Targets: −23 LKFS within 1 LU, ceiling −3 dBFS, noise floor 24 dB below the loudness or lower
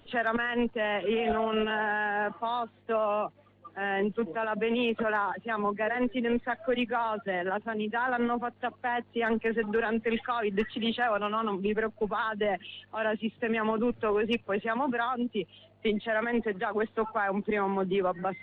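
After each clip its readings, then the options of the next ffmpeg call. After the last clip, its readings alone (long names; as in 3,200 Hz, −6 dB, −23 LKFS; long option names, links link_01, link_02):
integrated loudness −30.0 LKFS; sample peak −17.0 dBFS; target loudness −23.0 LKFS
→ -af "volume=7dB"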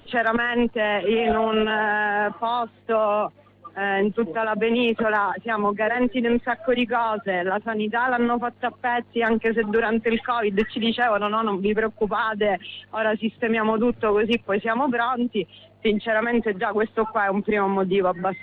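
integrated loudness −23.0 LKFS; sample peak −10.0 dBFS; background noise floor −53 dBFS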